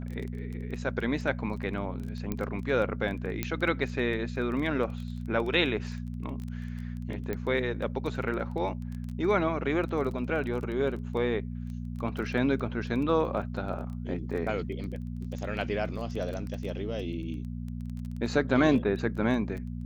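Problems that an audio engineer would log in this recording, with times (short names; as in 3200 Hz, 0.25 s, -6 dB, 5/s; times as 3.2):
crackle 14/s -35 dBFS
hum 60 Hz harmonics 4 -36 dBFS
2.32 pop -18 dBFS
3.43 pop -14 dBFS
7.33 pop -20 dBFS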